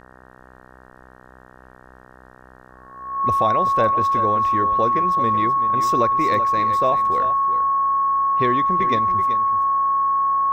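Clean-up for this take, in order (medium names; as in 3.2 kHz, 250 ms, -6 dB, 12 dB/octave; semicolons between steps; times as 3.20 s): de-hum 63.5 Hz, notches 29; band-stop 1.1 kHz, Q 30; inverse comb 381 ms -11.5 dB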